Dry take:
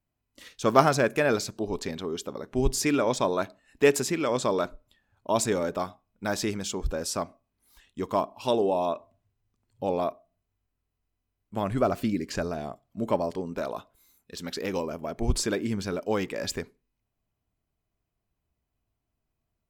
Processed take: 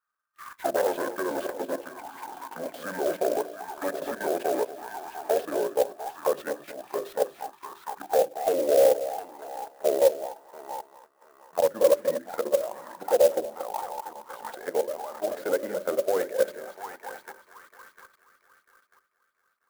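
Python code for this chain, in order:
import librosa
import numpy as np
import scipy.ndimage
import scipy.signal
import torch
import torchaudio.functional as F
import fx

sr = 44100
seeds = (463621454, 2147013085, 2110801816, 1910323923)

p1 = fx.pitch_glide(x, sr, semitones=-8.5, runs='ending unshifted')
p2 = fx.high_shelf(p1, sr, hz=3100.0, db=9.5)
p3 = fx.fold_sine(p2, sr, drive_db=14, ceiling_db=-3.0)
p4 = p3 + fx.echo_heads(p3, sr, ms=235, heads='first and third', feedback_pct=44, wet_db=-10.0, dry=0)
p5 = fx.level_steps(p4, sr, step_db=12)
p6 = fx.bandpass_edges(p5, sr, low_hz=240.0, high_hz=5100.0)
p7 = fx.peak_eq(p6, sr, hz=1600.0, db=11.5, octaves=0.69)
p8 = fx.hum_notches(p7, sr, base_hz=50, count=8)
p9 = fx.auto_wah(p8, sr, base_hz=560.0, top_hz=1200.0, q=6.6, full_db=-13.5, direction='down')
y = fx.clock_jitter(p9, sr, seeds[0], jitter_ms=0.039)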